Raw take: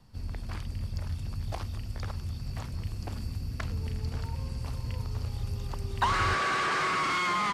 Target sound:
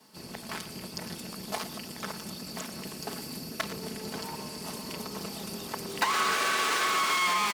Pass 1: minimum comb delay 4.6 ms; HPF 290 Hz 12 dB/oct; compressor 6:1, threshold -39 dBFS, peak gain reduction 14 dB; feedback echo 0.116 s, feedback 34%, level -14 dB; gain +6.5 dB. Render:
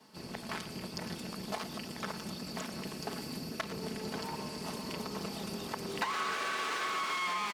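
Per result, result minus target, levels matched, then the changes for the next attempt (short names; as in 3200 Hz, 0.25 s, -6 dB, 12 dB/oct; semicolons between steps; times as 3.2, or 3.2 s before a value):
compressor: peak gain reduction +7 dB; 8000 Hz band -3.5 dB
change: compressor 6:1, threshold -30 dBFS, peak gain reduction 6.5 dB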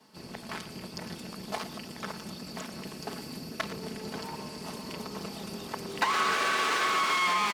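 8000 Hz band -4.5 dB
add after HPF: high shelf 7100 Hz +10.5 dB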